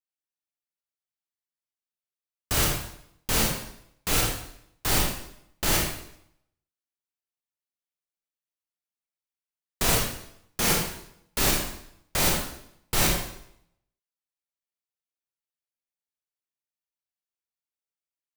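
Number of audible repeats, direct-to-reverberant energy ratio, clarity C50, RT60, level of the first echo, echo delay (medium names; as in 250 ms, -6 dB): no echo, -2.5 dB, 2.0 dB, 0.70 s, no echo, no echo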